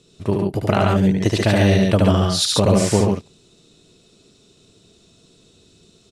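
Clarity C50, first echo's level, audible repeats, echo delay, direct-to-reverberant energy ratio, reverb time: no reverb audible, −3.0 dB, 2, 74 ms, no reverb audible, no reverb audible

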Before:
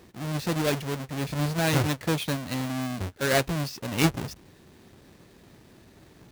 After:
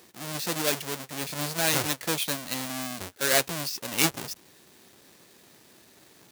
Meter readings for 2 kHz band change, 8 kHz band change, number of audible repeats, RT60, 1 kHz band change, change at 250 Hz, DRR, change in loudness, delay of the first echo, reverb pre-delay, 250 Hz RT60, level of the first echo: +0.5 dB, +7.0 dB, no echo audible, no reverb audible, −1.5 dB, −6.5 dB, no reverb audible, 0.0 dB, no echo audible, no reverb audible, no reverb audible, no echo audible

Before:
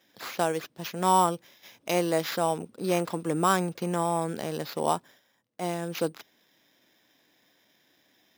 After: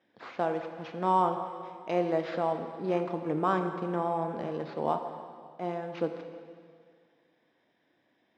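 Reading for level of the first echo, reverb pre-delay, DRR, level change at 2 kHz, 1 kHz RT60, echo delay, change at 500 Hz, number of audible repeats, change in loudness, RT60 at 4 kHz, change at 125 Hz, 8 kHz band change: no echo audible, 6 ms, 5.5 dB, −6.0 dB, 2.0 s, no echo audible, −1.5 dB, no echo audible, −3.0 dB, 1.9 s, −4.5 dB, below −25 dB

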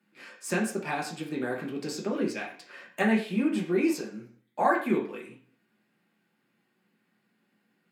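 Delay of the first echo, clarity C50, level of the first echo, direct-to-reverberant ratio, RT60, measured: no echo audible, 8.0 dB, no echo audible, −2.5 dB, 0.50 s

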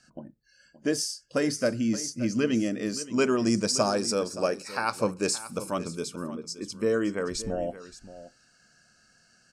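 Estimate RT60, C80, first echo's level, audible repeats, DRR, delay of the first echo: no reverb audible, no reverb audible, −15.0 dB, 1, no reverb audible, 573 ms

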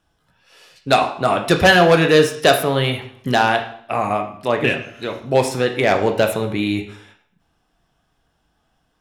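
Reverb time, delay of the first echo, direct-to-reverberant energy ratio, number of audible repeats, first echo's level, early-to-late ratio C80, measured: 0.60 s, no echo audible, 4.5 dB, no echo audible, no echo audible, 12.5 dB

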